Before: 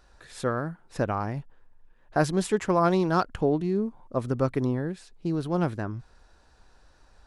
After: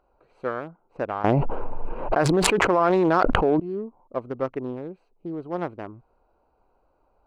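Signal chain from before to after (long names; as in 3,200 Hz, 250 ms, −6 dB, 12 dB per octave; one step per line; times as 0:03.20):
adaptive Wiener filter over 25 samples
bass and treble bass −14 dB, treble −13 dB
0:01.24–0:03.60: envelope flattener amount 100%
level +1.5 dB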